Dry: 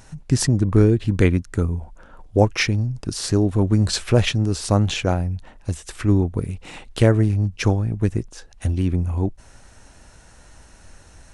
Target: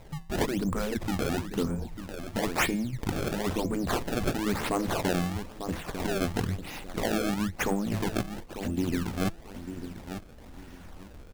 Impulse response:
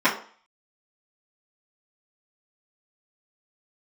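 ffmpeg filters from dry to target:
-filter_complex "[0:a]afftfilt=real='re*lt(hypot(re,im),0.631)':imag='im*lt(hypot(re,im),0.631)':win_size=1024:overlap=0.75,bandreject=frequency=167:width_type=h:width=4,bandreject=frequency=334:width_type=h:width=4,bandreject=frequency=501:width_type=h:width=4,bandreject=frequency=668:width_type=h:width=4,bandreject=frequency=835:width_type=h:width=4,bandreject=frequency=1002:width_type=h:width=4,bandreject=frequency=1169:width_type=h:width=4,bandreject=frequency=1336:width_type=h:width=4,bandreject=frequency=1503:width_type=h:width=4,bandreject=frequency=1670:width_type=h:width=4,bandreject=frequency=1837:width_type=h:width=4,bandreject=frequency=2004:width_type=h:width=4,bandreject=frequency=2171:width_type=h:width=4,bandreject=frequency=2338:width_type=h:width=4,bandreject=frequency=2505:width_type=h:width=4,bandreject=frequency=2672:width_type=h:width=4,bandreject=frequency=2839:width_type=h:width=4,bandreject=frequency=3006:width_type=h:width=4,bandreject=frequency=3173:width_type=h:width=4,bandreject=frequency=3340:width_type=h:width=4,bandreject=frequency=3507:width_type=h:width=4,bandreject=frequency=3674:width_type=h:width=4,bandreject=frequency=3841:width_type=h:width=4,bandreject=frequency=4008:width_type=h:width=4,bandreject=frequency=4175:width_type=h:width=4,bandreject=frequency=4342:width_type=h:width=4,bandreject=frequency=4509:width_type=h:width=4,bandreject=frequency=4676:width_type=h:width=4,adynamicequalizer=threshold=0.00891:dfrequency=220:dqfactor=2:tfrequency=220:tqfactor=2:attack=5:release=100:ratio=0.375:range=1.5:mode=boostabove:tftype=bell,asplit=2[link_01][link_02];[link_02]adelay=897,lowpass=frequency=1900:poles=1,volume=-11dB,asplit=2[link_03][link_04];[link_04]adelay=897,lowpass=frequency=1900:poles=1,volume=0.29,asplit=2[link_05][link_06];[link_06]adelay=897,lowpass=frequency=1900:poles=1,volume=0.29[link_07];[link_01][link_03][link_05][link_07]amix=inputs=4:normalize=0,acrusher=samples=26:mix=1:aa=0.000001:lfo=1:lforange=41.6:lforate=1,asoftclip=type=tanh:threshold=-16.5dB,volume=-1.5dB"

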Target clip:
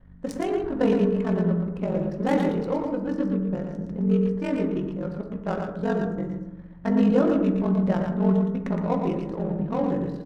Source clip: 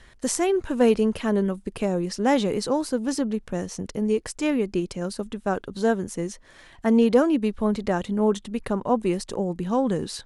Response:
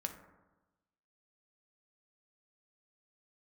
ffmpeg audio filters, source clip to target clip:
-filter_complex "[0:a]aeval=exprs='val(0)+0.00631*(sin(2*PI*50*n/s)+sin(2*PI*2*50*n/s)/2+sin(2*PI*3*50*n/s)/3+sin(2*PI*4*50*n/s)/4+sin(2*PI*5*50*n/s)/5)':channel_layout=same,aeval=exprs='val(0)*sin(2*PI*23*n/s)':channel_layout=same,adynamicsmooth=sensitivity=3:basefreq=900,aecho=1:1:116:0.531[link_01];[1:a]atrim=start_sample=2205[link_02];[link_01][link_02]afir=irnorm=-1:irlink=0"

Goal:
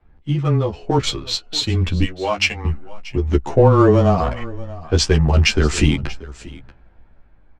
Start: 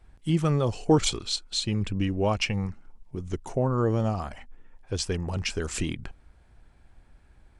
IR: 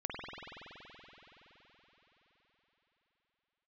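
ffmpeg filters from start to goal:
-filter_complex "[0:a]dynaudnorm=framelen=260:gausssize=11:maxgain=11dB,asettb=1/sr,asplit=3[link_01][link_02][link_03];[link_01]atrim=end=2.034[link_04];[link_02]atrim=start=2.03:end=2.65,asetpts=PTS-STARTPTS,afade=type=in:duration=0.004:curve=qsin,afade=type=out:start_time=0.616:duration=0.004:curve=qsin,highpass=frequency=1200:poles=1[link_05];[link_03]atrim=start=2.646[link_06];[link_04][link_05]acrossfade=duration=0.004:curve1=hsin:curve2=qsin[link_07];[link_07][link_06]acrossfade=duration=0.004:curve1=qsin:curve2=hsin,adynamicsmooth=sensitivity=6:basefreq=2500,lowpass=6900,aecho=1:1:634:0.112,afreqshift=-13,asplit=2[link_08][link_09];[link_09]adelay=14,volume=-10dB[link_10];[link_08][link_10]amix=inputs=2:normalize=0,asplit=2[link_11][link_12];[link_12]adelay=11.1,afreqshift=-0.35[link_13];[link_11][link_13]amix=inputs=2:normalize=1,volume=6dB"

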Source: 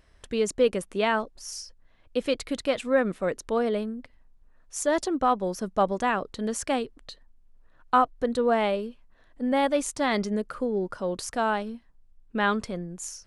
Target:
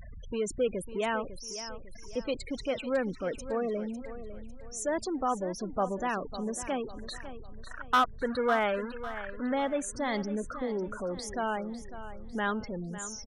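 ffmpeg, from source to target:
ffmpeg -i in.wav -filter_complex "[0:a]aeval=exprs='val(0)+0.5*0.0376*sgn(val(0))':channel_layout=same,asplit=3[link_01][link_02][link_03];[link_01]afade=type=out:start_time=6.98:duration=0.02[link_04];[link_02]equalizer=frequency=1500:width_type=o:width=1.2:gain=10.5,afade=type=in:start_time=6.98:duration=0.02,afade=type=out:start_time=9.53:duration=0.02[link_05];[link_03]afade=type=in:start_time=9.53:duration=0.02[link_06];[link_04][link_05][link_06]amix=inputs=3:normalize=0,afftfilt=real='re*gte(hypot(re,im),0.0447)':imag='im*gte(hypot(re,im),0.0447)':win_size=1024:overlap=0.75,asoftclip=type=hard:threshold=-11dB,aecho=1:1:551|1102|1653|2204:0.224|0.0895|0.0358|0.0143,volume=-8dB" out.wav

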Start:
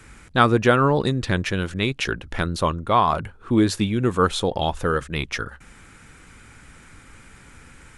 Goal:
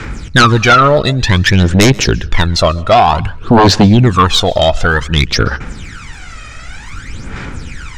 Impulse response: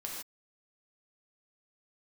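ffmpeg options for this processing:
-filter_complex "[0:a]lowpass=frequency=5800:width=0.5412,lowpass=frequency=5800:width=1.3066,aemphasis=mode=production:type=50kf,asplit=2[link_01][link_02];[link_02]acompressor=threshold=-26dB:ratio=6,volume=-2.5dB[link_03];[link_01][link_03]amix=inputs=2:normalize=0,aphaser=in_gain=1:out_gain=1:delay=1.6:decay=0.73:speed=0.54:type=sinusoidal,aeval=exprs='1.58*sin(PI/2*3.16*val(0)/1.58)':channel_layout=same,asplit=2[link_04][link_05];[1:a]atrim=start_sample=2205,afade=type=out:start_time=0.14:duration=0.01,atrim=end_sample=6615,adelay=130[link_06];[link_05][link_06]afir=irnorm=-1:irlink=0,volume=-21.5dB[link_07];[link_04][link_07]amix=inputs=2:normalize=0,volume=-6dB"

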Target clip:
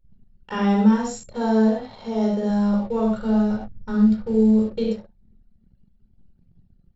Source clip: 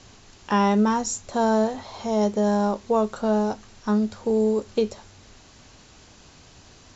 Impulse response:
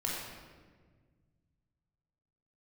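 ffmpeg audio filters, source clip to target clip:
-filter_complex "[0:a]equalizer=frequency=200:width_type=o:width=0.33:gain=7,equalizer=frequency=315:width_type=o:width=0.33:gain=-7,equalizer=frequency=1000:width_type=o:width=0.33:gain=-8,equalizer=frequency=6300:width_type=o:width=0.33:gain=-10[link_01];[1:a]atrim=start_sample=2205,atrim=end_sample=6174[link_02];[link_01][link_02]afir=irnorm=-1:irlink=0,asplit=3[link_03][link_04][link_05];[link_03]afade=type=out:start_time=2.49:duration=0.02[link_06];[link_04]asubboost=boost=3.5:cutoff=170,afade=type=in:start_time=2.49:duration=0.02,afade=type=out:start_time=4.87:duration=0.02[link_07];[link_05]afade=type=in:start_time=4.87:duration=0.02[link_08];[link_06][link_07][link_08]amix=inputs=3:normalize=0,anlmdn=1.58,volume=-4.5dB"

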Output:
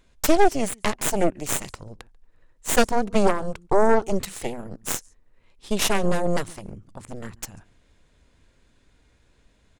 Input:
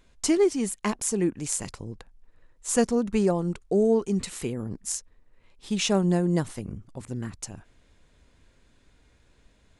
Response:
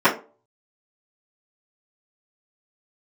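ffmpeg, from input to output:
-filter_complex "[0:a]asplit=2[link_01][link_02];[link_02]adelay=139.9,volume=-25dB,highshelf=frequency=4000:gain=-3.15[link_03];[link_01][link_03]amix=inputs=2:normalize=0,aeval=exprs='0.376*(cos(1*acos(clip(val(0)/0.376,-1,1)))-cos(1*PI/2))+0.168*(cos(6*acos(clip(val(0)/0.376,-1,1)))-cos(6*PI/2))':channel_layout=same"

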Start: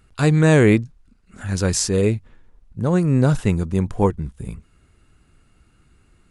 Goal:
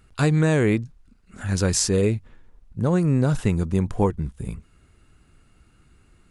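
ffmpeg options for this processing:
ffmpeg -i in.wav -af "acompressor=threshold=-15dB:ratio=6" out.wav

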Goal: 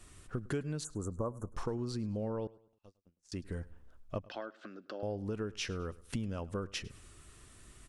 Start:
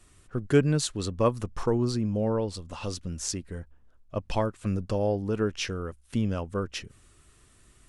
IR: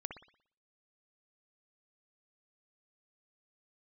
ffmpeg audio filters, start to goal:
-filter_complex "[0:a]acompressor=threshold=-37dB:ratio=5,asplit=3[link_01][link_02][link_03];[link_01]afade=type=out:start_time=0.83:duration=0.02[link_04];[link_02]asuperstop=centerf=3200:order=12:qfactor=0.65,afade=type=in:start_time=0.83:duration=0.02,afade=type=out:start_time=1.52:duration=0.02[link_05];[link_03]afade=type=in:start_time=1.52:duration=0.02[link_06];[link_04][link_05][link_06]amix=inputs=3:normalize=0,asettb=1/sr,asplit=3[link_07][link_08][link_09];[link_07]atrim=end=2.474[link_10];[link_08]atrim=start=2.47:end=3.32,asetpts=PTS-STARTPTS,afade=type=in:duration=0.004:curve=qsin,afade=type=out:start_time=0.846:duration=0.004:curve=qsin,agate=range=-53dB:threshold=-34dB:ratio=16:detection=peak[link_11];[link_09]atrim=start=3.316[link_12];[link_10][link_11]acrossfade=duration=0.004:curve1=hsin:curve2=qsin[link_13];[link_13][link_12]acrossfade=duration=0.004:curve1=qsin:curve2=hsin,asettb=1/sr,asplit=3[link_14][link_15][link_16];[link_14]atrim=end=4.244[link_17];[link_15]atrim=start=4.24:end=5.03,asetpts=PTS-STARTPTS,afade=type=in:duration=0.004:curve=qsin,afade=type=out:start_time=0.786:duration=0.004:curve=qsin,highpass=frequency=300:width=0.5412,highpass=frequency=300:width=1.3066,equalizer=frequency=460:width_type=q:width=4:gain=-8,equalizer=frequency=940:width_type=q:width=4:gain=-9,equalizer=frequency=1500:width_type=q:width=4:gain=8,equalizer=frequency=2400:width_type=q:width=4:gain=-8,lowpass=frequency=4600:width=0.5412,lowpass=frequency=4600:width=1.3066[link_18];[link_16]atrim=start=5.026[link_19];[link_17][link_18]acrossfade=duration=0.004:curve1=hsin:curve2=qsin[link_20];[link_20][link_19]acrossfade=duration=0.004:curve1=qsin:curve2=hsin,aecho=1:1:104|208|312:0.0841|0.032|0.0121,volume=2dB"

